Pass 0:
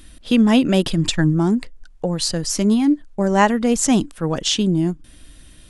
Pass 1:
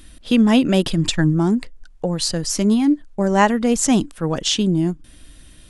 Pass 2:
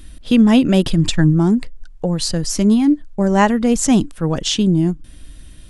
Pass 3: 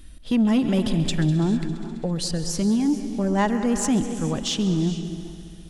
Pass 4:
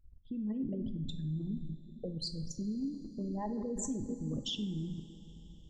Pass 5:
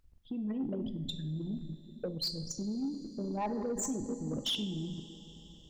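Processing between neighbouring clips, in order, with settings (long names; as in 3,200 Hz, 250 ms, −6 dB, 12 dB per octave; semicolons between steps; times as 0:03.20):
no processing that can be heard
low-shelf EQ 190 Hz +7.5 dB
echo machine with several playback heads 67 ms, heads second and third, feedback 67%, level −16.5 dB; reverb whose tail is shaped and stops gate 470 ms rising, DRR 11.5 dB; soft clipping −6 dBFS, distortion −19 dB; level −6.5 dB
spectral envelope exaggerated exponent 3; output level in coarse steps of 14 dB; coupled-rooms reverb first 0.44 s, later 4.9 s, from −18 dB, DRR 8 dB; level −9 dB
mid-hump overdrive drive 16 dB, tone 6,300 Hz, clips at −24.5 dBFS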